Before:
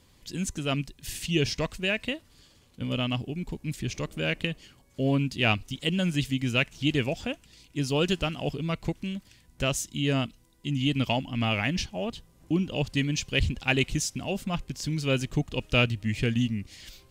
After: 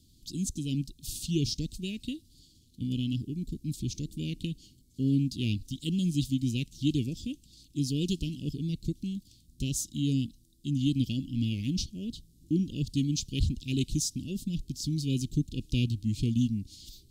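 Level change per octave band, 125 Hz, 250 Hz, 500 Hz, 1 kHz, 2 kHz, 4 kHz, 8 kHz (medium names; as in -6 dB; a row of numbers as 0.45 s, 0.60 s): -1.0 dB, -0.5 dB, -13.0 dB, under -40 dB, -18.5 dB, -7.0 dB, -1.0 dB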